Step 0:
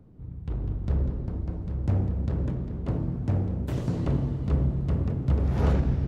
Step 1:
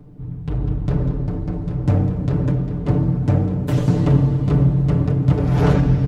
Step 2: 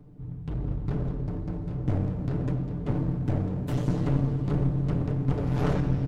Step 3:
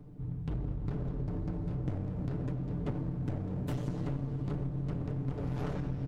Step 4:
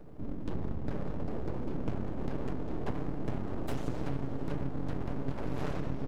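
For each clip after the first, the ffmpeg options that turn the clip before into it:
-af "aecho=1:1:6.8:0.87,volume=2.51"
-af "aeval=exprs='clip(val(0),-1,0.0891)':c=same,volume=0.422"
-af "acompressor=threshold=0.0282:ratio=6"
-af "aeval=exprs='abs(val(0))':c=same,volume=1.41"

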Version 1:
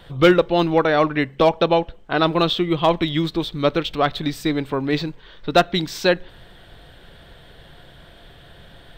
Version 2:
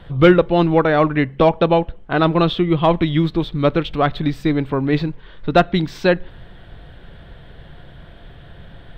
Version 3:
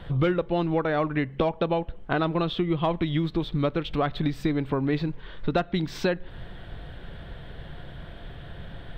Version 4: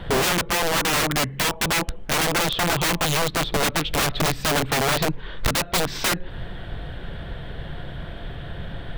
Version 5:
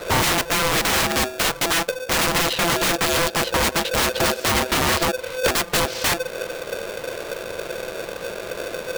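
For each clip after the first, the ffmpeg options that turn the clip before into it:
-af "bass=f=250:g=6,treble=f=4000:g=-13,volume=1.19"
-af "acompressor=threshold=0.0708:ratio=4"
-af "aeval=exprs='(mod(14.1*val(0)+1,2)-1)/14.1':c=same,volume=2.24"
-af "aeval=exprs='val(0)*sgn(sin(2*PI*510*n/s))':c=same,volume=1.19"

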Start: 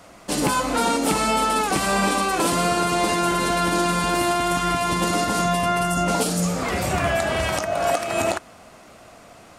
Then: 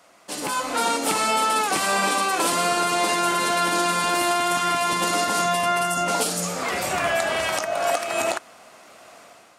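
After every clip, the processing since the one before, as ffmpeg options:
-af "dynaudnorm=f=400:g=3:m=2.66,highpass=f=580:p=1,volume=0.531"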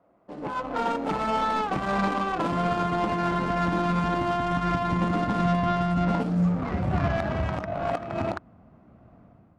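-af "asubboost=boost=10:cutoff=150,adynamicsmooth=sensitivity=0.5:basefreq=580"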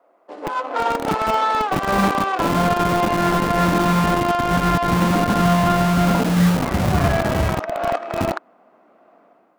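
-filter_complex "[0:a]acrossover=split=330|3200[s0][s1][s2];[s0]acrusher=bits=4:mix=0:aa=0.000001[s3];[s2]asoftclip=type=hard:threshold=0.0141[s4];[s3][s1][s4]amix=inputs=3:normalize=0,volume=2.24"

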